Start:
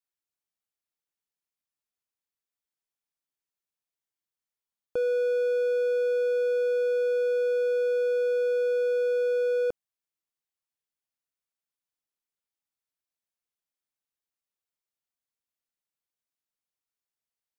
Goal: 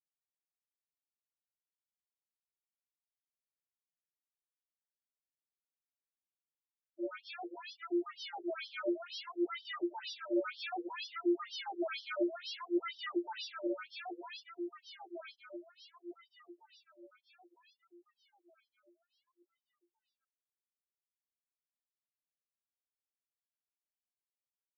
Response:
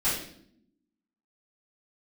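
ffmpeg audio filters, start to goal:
-filter_complex "[0:a]agate=range=-33dB:threshold=-15dB:ratio=3:detection=peak,highpass=frequency=220:width=0.5412,highpass=frequency=220:width=1.3066,lowshelf=frequency=300:gain=-9,aecho=1:1:2.4:0.88,asetrate=31311,aresample=44100,aecho=1:1:822|1644|2466|3288|4110|4932|5754|6576:0.473|0.274|0.159|0.0923|0.0535|0.0311|0.018|0.0104,acrusher=samples=37:mix=1:aa=0.000001:lfo=1:lforange=22.2:lforate=0.6,acrossover=split=950[link_01][link_02];[link_01]aeval=exprs='val(0)*(1-1/2+1/2*cos(2*PI*5.4*n/s))':channel_layout=same[link_03];[link_02]aeval=exprs='val(0)*(1-1/2-1/2*cos(2*PI*5.4*n/s))':channel_layout=same[link_04];[link_03][link_04]amix=inputs=2:normalize=0,aeval=exprs='0.0282*(cos(1*acos(clip(val(0)/0.0282,-1,1)))-cos(1*PI/2))+0.00178*(cos(6*acos(clip(val(0)/0.0282,-1,1)))-cos(6*PI/2))':channel_layout=same,afftfilt=real='re*between(b*sr/1024,390*pow(4200/390,0.5+0.5*sin(2*PI*2.1*pts/sr))/1.41,390*pow(4200/390,0.5+0.5*sin(2*PI*2.1*pts/sr))*1.41)':imag='im*between(b*sr/1024,390*pow(4200/390,0.5+0.5*sin(2*PI*2.1*pts/sr))/1.41,390*pow(4200/390,0.5+0.5*sin(2*PI*2.1*pts/sr))*1.41)':win_size=1024:overlap=0.75,volume=7dB"

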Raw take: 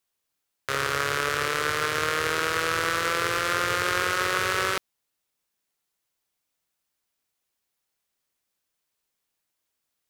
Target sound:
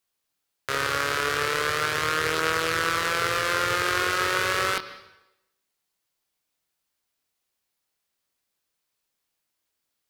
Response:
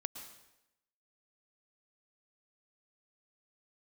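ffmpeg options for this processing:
-filter_complex "[0:a]asplit=2[link_01][link_02];[link_02]highshelf=frequency=5900:width_type=q:width=3:gain=-7.5[link_03];[1:a]atrim=start_sample=2205,adelay=25[link_04];[link_03][link_04]afir=irnorm=-1:irlink=0,volume=-7dB[link_05];[link_01][link_05]amix=inputs=2:normalize=0"

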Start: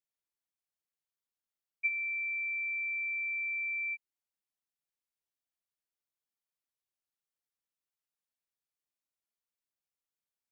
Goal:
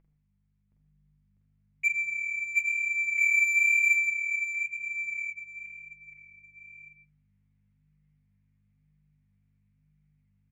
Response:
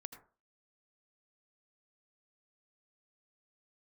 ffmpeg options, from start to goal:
-filter_complex "[0:a]aeval=exprs='val(0)+0.000316*(sin(2*PI*50*n/s)+sin(2*PI*2*50*n/s)/2+sin(2*PI*3*50*n/s)/3+sin(2*PI*4*50*n/s)/4+sin(2*PI*5*50*n/s)/5)':channel_layout=same,agate=range=-32dB:threshold=-57dB:ratio=16:detection=peak,acompressor=mode=upward:threshold=-43dB:ratio=2.5,asetnsamples=nb_out_samples=441:pad=0,asendcmd='3.18 equalizer g 15',equalizer=frequency=2200:width=2.2:gain=8,asplit=2[link_01][link_02];[link_02]adelay=46,volume=-2.5dB[link_03];[link_01][link_03]amix=inputs=2:normalize=0,aecho=1:1:720|1368|1951|2476|2948:0.631|0.398|0.251|0.158|0.1[link_04];[1:a]atrim=start_sample=2205[link_05];[link_04][link_05]afir=irnorm=-1:irlink=0,adynamicsmooth=sensitivity=3.5:basefreq=2200,flanger=delay=6:depth=5.4:regen=29:speed=1:shape=sinusoidal,volume=8dB"

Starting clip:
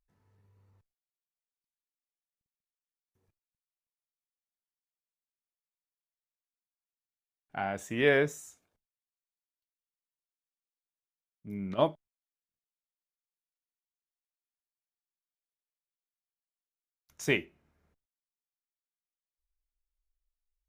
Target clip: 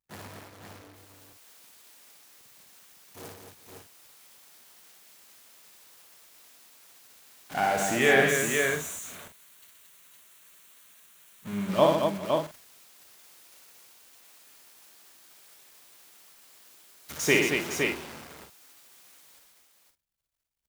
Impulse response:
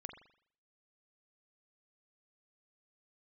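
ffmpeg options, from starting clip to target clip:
-filter_complex "[0:a]aeval=exprs='val(0)+0.5*0.0178*sgn(val(0))':channel_layout=same,highpass=frequency=240:poles=1,agate=range=-45dB:threshold=-43dB:ratio=16:detection=peak,asettb=1/sr,asplit=3[link_01][link_02][link_03];[link_01]atrim=end=7.994[link_04];[link_02]atrim=start=7.99:end=11.69,asetpts=PTS-STARTPTS,afade=type=in:duration=0.004:curve=qsin,afade=type=out:start_time=3.696:duration=0.004:curve=qsin,equalizer=frequency=315:width_type=o:width=0.33:gain=-9,equalizer=frequency=500:width_type=o:width=0.33:gain=-7,equalizer=frequency=800:width_type=o:width=0.33:gain=-8,equalizer=frequency=5000:width_type=o:width=0.33:gain=-10[link_05];[link_03]atrim=start=11.686[link_06];[link_04][link_05]acrossfade=duration=0.004:curve1=hsin:curve2=qsin[link_07];[link_07][link_06]acrossfade=duration=0.004:curve1=qsin:curve2=hsin,aecho=1:1:59|124|226|402|513|558:0.631|0.422|0.531|0.106|0.596|0.266,volume=4.5dB"

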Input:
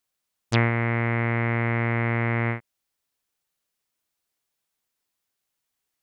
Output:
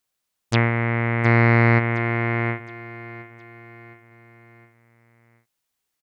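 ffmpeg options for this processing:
ffmpeg -i in.wav -filter_complex "[0:a]asplit=3[link_01][link_02][link_03];[link_01]afade=type=out:start_time=1.24:duration=0.02[link_04];[link_02]acontrast=83,afade=type=in:start_time=1.24:duration=0.02,afade=type=out:start_time=1.78:duration=0.02[link_05];[link_03]afade=type=in:start_time=1.78:duration=0.02[link_06];[link_04][link_05][link_06]amix=inputs=3:normalize=0,aecho=1:1:715|1430|2145|2860:0.158|0.0729|0.0335|0.0154,volume=2dB" out.wav

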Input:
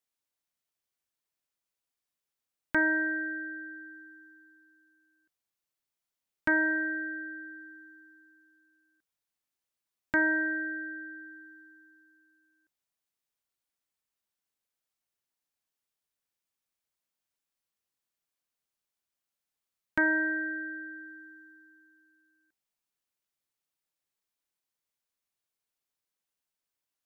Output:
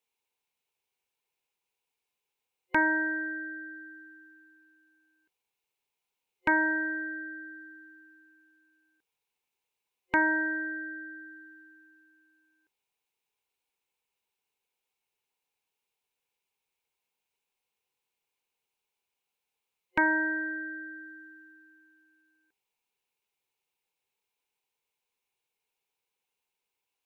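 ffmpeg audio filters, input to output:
ffmpeg -i in.wav -af "superequalizer=7b=2.82:9b=2.82:12b=2.82:13b=1.58" out.wav

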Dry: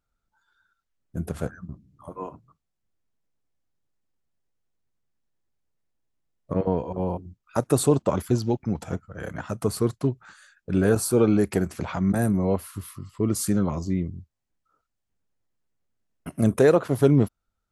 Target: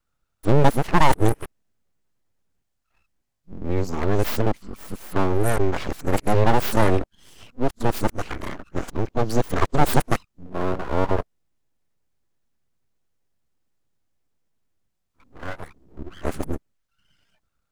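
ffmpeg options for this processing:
ffmpeg -i in.wav -af "areverse,aeval=exprs='abs(val(0))':channel_layout=same,volume=5dB" out.wav

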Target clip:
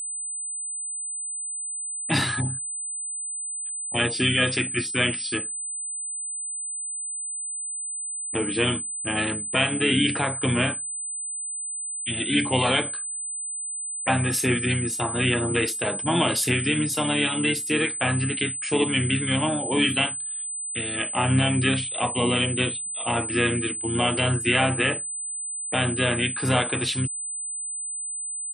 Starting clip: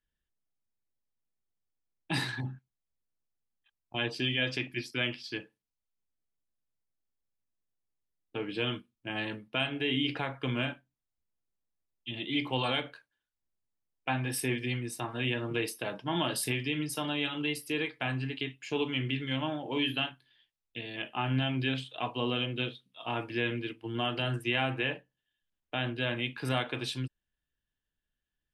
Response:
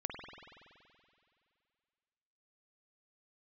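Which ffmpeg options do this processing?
-filter_complex "[0:a]asplit=2[link_01][link_02];[link_02]asetrate=33038,aresample=44100,atempo=1.33484,volume=-8dB[link_03];[link_01][link_03]amix=inputs=2:normalize=0,aeval=exprs='val(0)+0.0141*sin(2*PI*8100*n/s)':channel_layout=same,volume=8dB"

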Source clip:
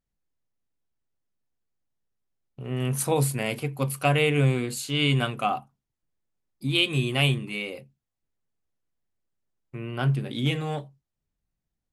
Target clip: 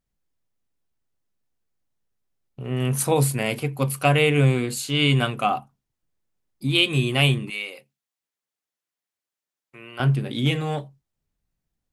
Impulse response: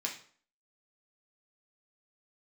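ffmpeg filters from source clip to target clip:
-filter_complex "[0:a]asettb=1/sr,asplit=3[link_01][link_02][link_03];[link_01]atrim=end=7.504[link_04];[link_02]atrim=start=7.5:end=10,asetpts=PTS-STARTPTS,afade=type=in:duration=0.004:curve=qsin,afade=type=out:start_time=2.496:duration=0.004:curve=qsin,highpass=frequency=1300:poles=1[link_05];[link_03]atrim=start=9.996[link_06];[link_04][link_05]acrossfade=duration=0.004:curve1=hsin:curve2=qsin[link_07];[link_07][link_06]acrossfade=duration=0.004:curve1=qsin:curve2=hsin,volume=3.5dB"

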